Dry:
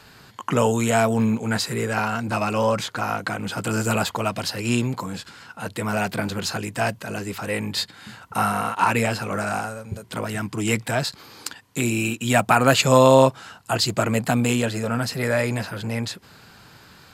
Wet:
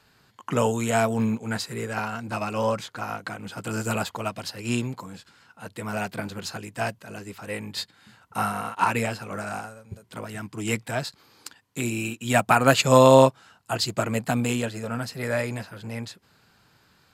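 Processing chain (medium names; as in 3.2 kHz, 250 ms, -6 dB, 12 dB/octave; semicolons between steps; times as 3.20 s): upward expansion 1.5:1, over -36 dBFS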